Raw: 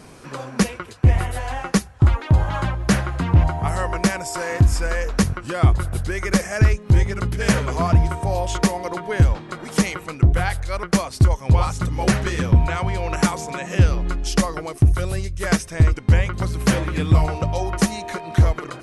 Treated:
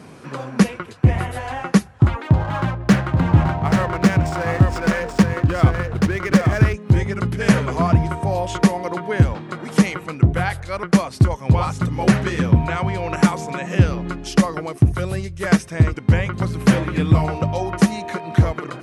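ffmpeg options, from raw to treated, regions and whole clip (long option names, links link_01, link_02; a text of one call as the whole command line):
ffmpeg -i in.wav -filter_complex "[0:a]asettb=1/sr,asplit=3[link_01][link_02][link_03];[link_01]atrim=end=2.234[link_04];[link_02]atrim=start=2.23:end=6.74,asetpts=PTS-STARTPTS,afade=type=in:duration=0.004:curve=qsin,afade=type=out:start_time=4.506:duration=0.004:curve=qsin,highshelf=frequency=9300:gain=2.5,adynamicsmooth=sensitivity=7:basefreq=1200,aecho=1:1:831:0.631,atrim=end_sample=198891[link_05];[link_03]atrim=start=6.736[link_06];[link_04][link_05]acrossfade=duration=0.004:curve1=hsin:curve2=qsin[link_07];[link_07][link_06]acrossfade=duration=0.004:curve1=qsin:curve2=hsin,highpass=140,bass=frequency=250:gain=6,treble=frequency=4000:gain=-6,volume=1.5dB" out.wav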